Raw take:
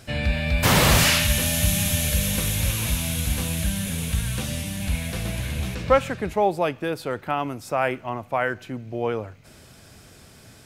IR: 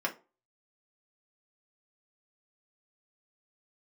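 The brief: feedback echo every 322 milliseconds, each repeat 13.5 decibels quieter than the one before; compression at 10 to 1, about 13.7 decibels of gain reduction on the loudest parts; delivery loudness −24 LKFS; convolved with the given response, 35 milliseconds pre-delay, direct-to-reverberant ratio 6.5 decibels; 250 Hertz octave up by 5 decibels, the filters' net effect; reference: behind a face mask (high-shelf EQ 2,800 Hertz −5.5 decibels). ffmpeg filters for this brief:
-filter_complex "[0:a]equalizer=frequency=250:width_type=o:gain=7,acompressor=threshold=-26dB:ratio=10,aecho=1:1:322|644:0.211|0.0444,asplit=2[link_01][link_02];[1:a]atrim=start_sample=2205,adelay=35[link_03];[link_02][link_03]afir=irnorm=-1:irlink=0,volume=-13dB[link_04];[link_01][link_04]amix=inputs=2:normalize=0,highshelf=frequency=2800:gain=-5.5,volume=7dB"

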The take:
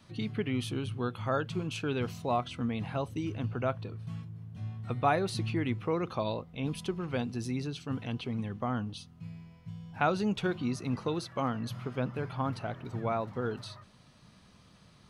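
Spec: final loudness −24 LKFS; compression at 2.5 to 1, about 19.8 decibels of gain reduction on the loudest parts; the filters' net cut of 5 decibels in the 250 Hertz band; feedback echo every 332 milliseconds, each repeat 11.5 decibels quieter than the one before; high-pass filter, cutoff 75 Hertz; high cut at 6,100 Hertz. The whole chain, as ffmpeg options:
ffmpeg -i in.wav -af "highpass=75,lowpass=6100,equalizer=frequency=250:width_type=o:gain=-6.5,acompressor=threshold=-54dB:ratio=2.5,aecho=1:1:332|664|996:0.266|0.0718|0.0194,volume=27dB" out.wav

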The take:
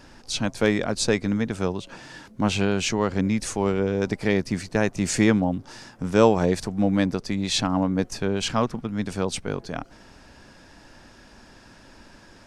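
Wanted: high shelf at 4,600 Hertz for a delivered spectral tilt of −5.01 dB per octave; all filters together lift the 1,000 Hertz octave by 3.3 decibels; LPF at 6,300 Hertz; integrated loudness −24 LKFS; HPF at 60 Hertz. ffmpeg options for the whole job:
ffmpeg -i in.wav -af "highpass=60,lowpass=6300,equalizer=frequency=1000:width_type=o:gain=4,highshelf=frequency=4600:gain=4,volume=-0.5dB" out.wav

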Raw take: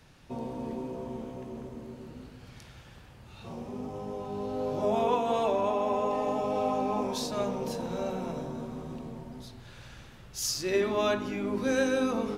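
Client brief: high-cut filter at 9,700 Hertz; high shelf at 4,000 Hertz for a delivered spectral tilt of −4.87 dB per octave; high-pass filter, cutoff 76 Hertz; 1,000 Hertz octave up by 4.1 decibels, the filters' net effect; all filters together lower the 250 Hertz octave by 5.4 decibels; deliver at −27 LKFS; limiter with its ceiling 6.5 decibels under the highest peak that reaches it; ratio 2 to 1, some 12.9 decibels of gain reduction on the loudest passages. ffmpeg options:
ffmpeg -i in.wav -af "highpass=76,lowpass=9700,equalizer=frequency=250:width_type=o:gain=-6.5,equalizer=frequency=1000:width_type=o:gain=6,highshelf=frequency=4000:gain=-8,acompressor=threshold=-44dB:ratio=2,volume=16.5dB,alimiter=limit=-16.5dB:level=0:latency=1" out.wav

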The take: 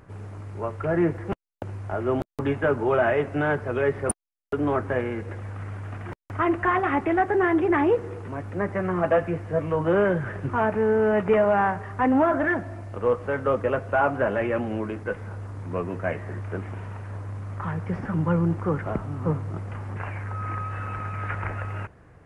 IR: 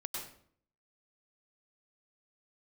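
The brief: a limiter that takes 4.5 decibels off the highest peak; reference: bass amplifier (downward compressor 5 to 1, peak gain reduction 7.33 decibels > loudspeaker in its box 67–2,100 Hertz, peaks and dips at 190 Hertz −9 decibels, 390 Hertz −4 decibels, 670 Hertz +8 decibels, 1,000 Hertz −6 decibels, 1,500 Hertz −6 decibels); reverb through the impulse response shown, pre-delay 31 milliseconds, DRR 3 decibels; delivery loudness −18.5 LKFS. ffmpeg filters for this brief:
-filter_complex "[0:a]alimiter=limit=-15dB:level=0:latency=1,asplit=2[link_01][link_02];[1:a]atrim=start_sample=2205,adelay=31[link_03];[link_02][link_03]afir=irnorm=-1:irlink=0,volume=-3.5dB[link_04];[link_01][link_04]amix=inputs=2:normalize=0,acompressor=threshold=-23dB:ratio=5,highpass=frequency=67:width=0.5412,highpass=frequency=67:width=1.3066,equalizer=frequency=190:width_type=q:width=4:gain=-9,equalizer=frequency=390:width_type=q:width=4:gain=-4,equalizer=frequency=670:width_type=q:width=4:gain=8,equalizer=frequency=1000:width_type=q:width=4:gain=-6,equalizer=frequency=1500:width_type=q:width=4:gain=-6,lowpass=frequency=2100:width=0.5412,lowpass=frequency=2100:width=1.3066,volume=10dB"

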